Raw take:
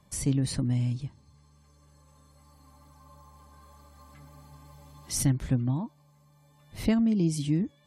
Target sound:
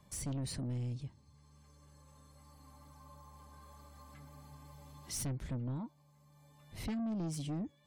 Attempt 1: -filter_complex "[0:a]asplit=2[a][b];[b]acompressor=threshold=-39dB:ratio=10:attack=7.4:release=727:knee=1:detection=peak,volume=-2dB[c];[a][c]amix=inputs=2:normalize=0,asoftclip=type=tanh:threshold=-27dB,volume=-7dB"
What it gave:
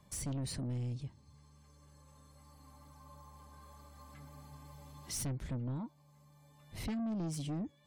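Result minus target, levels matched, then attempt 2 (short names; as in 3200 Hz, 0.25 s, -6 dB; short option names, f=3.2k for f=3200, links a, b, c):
compressor: peak gain reduction -8.5 dB
-filter_complex "[0:a]asplit=2[a][b];[b]acompressor=threshold=-48.5dB:ratio=10:attack=7.4:release=727:knee=1:detection=peak,volume=-2dB[c];[a][c]amix=inputs=2:normalize=0,asoftclip=type=tanh:threshold=-27dB,volume=-7dB"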